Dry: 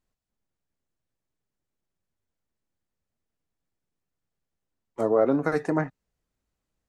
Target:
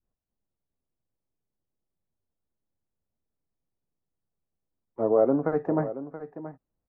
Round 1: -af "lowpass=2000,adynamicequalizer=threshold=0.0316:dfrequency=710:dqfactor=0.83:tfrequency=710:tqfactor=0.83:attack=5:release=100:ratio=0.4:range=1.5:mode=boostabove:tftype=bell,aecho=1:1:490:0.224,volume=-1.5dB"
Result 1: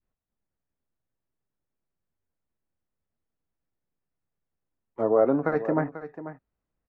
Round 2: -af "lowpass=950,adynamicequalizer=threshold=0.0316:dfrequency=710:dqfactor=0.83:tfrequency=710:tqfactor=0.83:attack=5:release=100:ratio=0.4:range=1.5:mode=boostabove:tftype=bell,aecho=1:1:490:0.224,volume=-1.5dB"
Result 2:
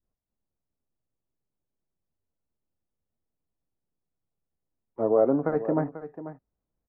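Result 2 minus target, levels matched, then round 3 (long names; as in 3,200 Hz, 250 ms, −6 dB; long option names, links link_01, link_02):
echo 187 ms early
-af "lowpass=950,adynamicequalizer=threshold=0.0316:dfrequency=710:dqfactor=0.83:tfrequency=710:tqfactor=0.83:attack=5:release=100:ratio=0.4:range=1.5:mode=boostabove:tftype=bell,aecho=1:1:677:0.224,volume=-1.5dB"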